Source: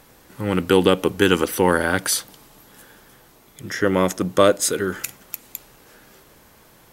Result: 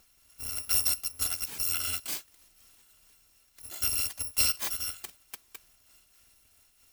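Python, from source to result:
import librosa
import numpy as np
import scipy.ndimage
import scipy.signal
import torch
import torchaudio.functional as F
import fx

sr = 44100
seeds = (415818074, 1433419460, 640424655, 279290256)

y = fx.bit_reversed(x, sr, seeds[0], block=256)
y = fx.am_noise(y, sr, seeds[1], hz=5.7, depth_pct=60)
y = y * 10.0 ** (-8.5 / 20.0)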